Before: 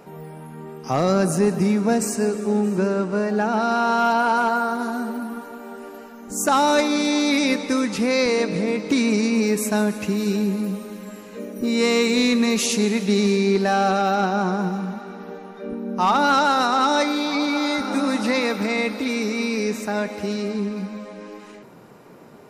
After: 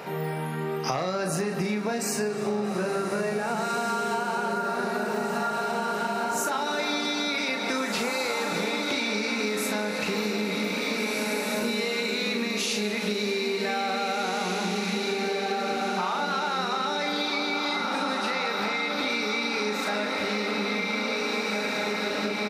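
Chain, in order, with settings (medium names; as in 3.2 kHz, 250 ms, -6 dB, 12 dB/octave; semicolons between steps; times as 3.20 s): graphic EQ 250/2000/4000/8000 Hz -7/+4/+5/-5 dB; peak limiter -16 dBFS, peak gain reduction 9.5 dB; high-pass 75 Hz; bass shelf 130 Hz -6 dB; doubling 38 ms -5 dB; echo that smears into a reverb 1860 ms, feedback 47%, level -3.5 dB; compression 12:1, threshold -33 dBFS, peak gain reduction 16.5 dB; trim +8.5 dB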